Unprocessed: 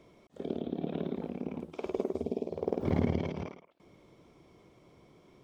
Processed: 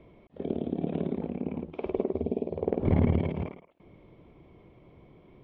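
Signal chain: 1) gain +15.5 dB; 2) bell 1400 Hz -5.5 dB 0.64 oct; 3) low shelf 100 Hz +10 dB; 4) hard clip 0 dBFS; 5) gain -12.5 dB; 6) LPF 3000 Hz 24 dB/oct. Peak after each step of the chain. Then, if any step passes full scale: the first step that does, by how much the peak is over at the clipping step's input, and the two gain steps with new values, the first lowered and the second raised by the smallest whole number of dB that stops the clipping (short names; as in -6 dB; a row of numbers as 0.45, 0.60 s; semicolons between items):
+2.0, +2.0, +4.0, 0.0, -12.5, -12.5 dBFS; step 1, 4.0 dB; step 1 +11.5 dB, step 5 -8.5 dB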